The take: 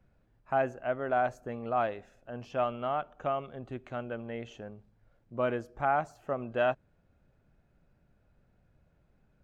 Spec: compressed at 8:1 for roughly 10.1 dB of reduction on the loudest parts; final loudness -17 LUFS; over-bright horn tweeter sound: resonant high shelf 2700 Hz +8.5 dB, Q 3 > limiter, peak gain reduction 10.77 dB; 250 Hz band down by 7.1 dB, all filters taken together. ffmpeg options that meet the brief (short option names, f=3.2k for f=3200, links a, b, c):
-af "equalizer=f=250:t=o:g=-8.5,acompressor=threshold=-34dB:ratio=8,highshelf=f=2.7k:t=q:w=3:g=8.5,volume=28dB,alimiter=limit=-6dB:level=0:latency=1"